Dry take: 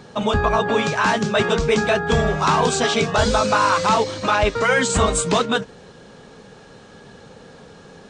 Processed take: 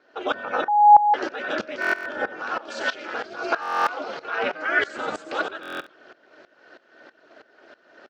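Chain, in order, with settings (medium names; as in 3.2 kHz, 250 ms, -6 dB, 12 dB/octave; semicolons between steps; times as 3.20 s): reverb removal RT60 0.63 s; 1.76–3.46 s: compressor with a negative ratio -24 dBFS, ratio -1; peak limiter -11.5 dBFS, peak gain reduction 6 dB; frequency-shifting echo 93 ms, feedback 53%, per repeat -70 Hz, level -9.5 dB; reverberation RT60 1.5 s, pre-delay 38 ms, DRR 16.5 dB; ring modulator 160 Hz; cabinet simulation 420–4700 Hz, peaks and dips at 460 Hz +3 dB, 1 kHz -7 dB, 1.5 kHz +8 dB, 3.7 kHz -7 dB; 0.68–1.14 s: bleep 832 Hz -7.5 dBFS; buffer glitch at 1.80/3.61/5.61 s, samples 1024, times 10; sawtooth tremolo in dB swelling 3.1 Hz, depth 18 dB; trim +4 dB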